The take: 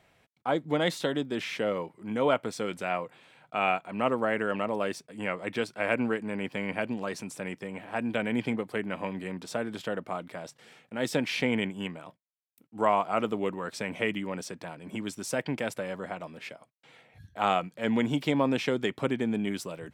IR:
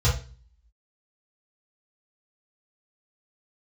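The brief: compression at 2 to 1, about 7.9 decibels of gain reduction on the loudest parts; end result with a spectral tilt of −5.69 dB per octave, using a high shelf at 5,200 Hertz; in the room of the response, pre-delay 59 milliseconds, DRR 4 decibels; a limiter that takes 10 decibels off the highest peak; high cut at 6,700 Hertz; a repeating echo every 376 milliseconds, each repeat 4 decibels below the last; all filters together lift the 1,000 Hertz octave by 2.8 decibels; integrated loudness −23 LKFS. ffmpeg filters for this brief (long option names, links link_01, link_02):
-filter_complex "[0:a]lowpass=6700,equalizer=frequency=1000:width_type=o:gain=3.5,highshelf=frequency=5200:gain=7.5,acompressor=threshold=-32dB:ratio=2,alimiter=level_in=0.5dB:limit=-24dB:level=0:latency=1,volume=-0.5dB,aecho=1:1:376|752|1128|1504|1880|2256|2632|3008|3384:0.631|0.398|0.25|0.158|0.0994|0.0626|0.0394|0.0249|0.0157,asplit=2[link_01][link_02];[1:a]atrim=start_sample=2205,adelay=59[link_03];[link_02][link_03]afir=irnorm=-1:irlink=0,volume=-16.5dB[link_04];[link_01][link_04]amix=inputs=2:normalize=0,volume=8.5dB"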